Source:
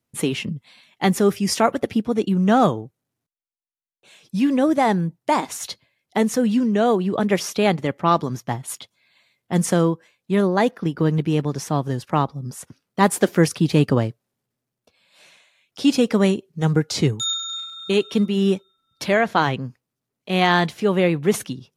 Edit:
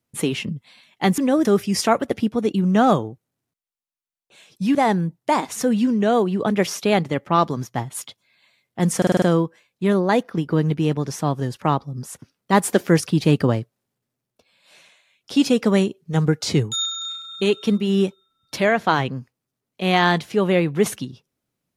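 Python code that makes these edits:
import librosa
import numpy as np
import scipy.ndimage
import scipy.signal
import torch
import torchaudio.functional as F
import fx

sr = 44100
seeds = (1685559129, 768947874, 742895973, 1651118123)

y = fx.edit(x, sr, fx.move(start_s=4.48, length_s=0.27, to_s=1.18),
    fx.cut(start_s=5.56, length_s=0.73),
    fx.stutter(start_s=9.7, slice_s=0.05, count=6), tone=tone)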